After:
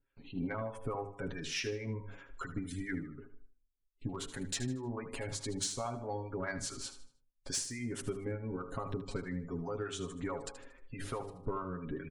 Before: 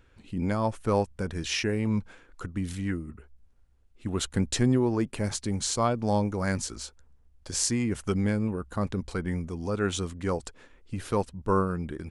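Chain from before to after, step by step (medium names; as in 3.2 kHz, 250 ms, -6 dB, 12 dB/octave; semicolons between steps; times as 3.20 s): gate with hold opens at -46 dBFS; spectral gate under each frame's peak -30 dB strong; peaking EQ 95 Hz -4.5 dB 2.2 oct; comb 7.3 ms, depth 86%; de-hum 49.46 Hz, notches 25; compression 16:1, threshold -32 dBFS, peak gain reduction 17 dB; hard clipper -24.5 dBFS, distortion -35 dB; harmonic tremolo 4.7 Hz, depth 70%, crossover 560 Hz; saturation -24.5 dBFS, distortion -28 dB; on a send: feedback delay 77 ms, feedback 35%, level -12 dB; on the sum: trim +1.5 dB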